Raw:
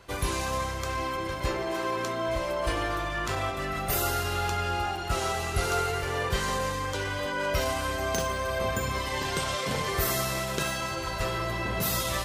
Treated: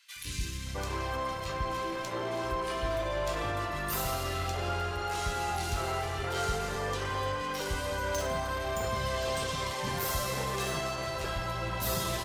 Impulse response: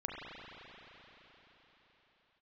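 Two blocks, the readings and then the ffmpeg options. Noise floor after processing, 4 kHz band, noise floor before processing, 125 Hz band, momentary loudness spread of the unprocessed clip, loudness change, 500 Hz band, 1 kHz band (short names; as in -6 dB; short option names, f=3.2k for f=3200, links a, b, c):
-37 dBFS, -3.5 dB, -33 dBFS, -3.0 dB, 4 LU, -3.5 dB, -3.0 dB, -3.0 dB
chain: -filter_complex "[0:a]highshelf=f=6.8k:g=-3.5,asoftclip=type=tanh:threshold=-25.5dB,acrossover=split=270|2000[a][b][c];[a]adelay=160[d];[b]adelay=660[e];[d][e][c]amix=inputs=3:normalize=0"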